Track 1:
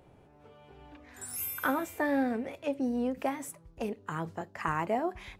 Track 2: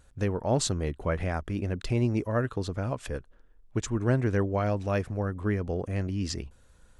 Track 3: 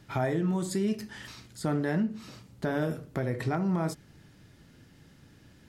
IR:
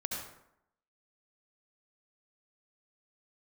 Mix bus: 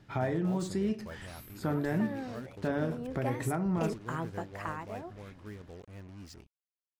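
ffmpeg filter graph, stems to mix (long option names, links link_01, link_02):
-filter_complex "[0:a]volume=-1dB,afade=type=in:start_time=1.64:duration=0.41:silence=0.398107,afade=type=in:start_time=2.99:duration=0.51:silence=0.316228,afade=type=out:start_time=4.39:duration=0.48:silence=0.251189[link_01];[1:a]acrusher=bits=5:mix=0:aa=0.5,volume=-17.5dB[link_02];[2:a]lowpass=frequency=3200:poles=1,volume=-2.5dB[link_03];[link_01][link_02][link_03]amix=inputs=3:normalize=0"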